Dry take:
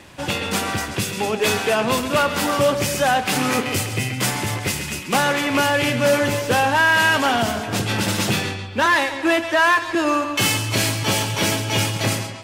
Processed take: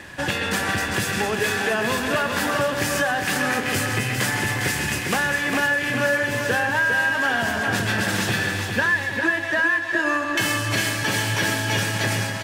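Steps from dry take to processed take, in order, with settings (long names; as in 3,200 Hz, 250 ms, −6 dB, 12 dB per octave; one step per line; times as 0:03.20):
parametric band 1,700 Hz +15 dB 0.21 octaves
downward compressor, threshold −22 dBFS, peak gain reduction 18.5 dB
on a send: repeating echo 404 ms, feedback 41%, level −6 dB
on the sum: level +1.5 dB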